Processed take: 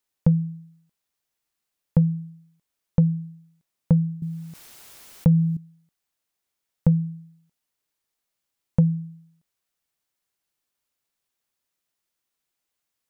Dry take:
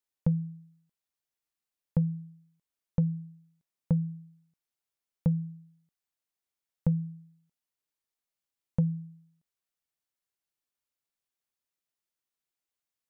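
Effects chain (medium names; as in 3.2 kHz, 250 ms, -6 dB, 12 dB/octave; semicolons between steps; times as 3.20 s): 4.22–5.57 s: level flattener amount 50%; trim +8 dB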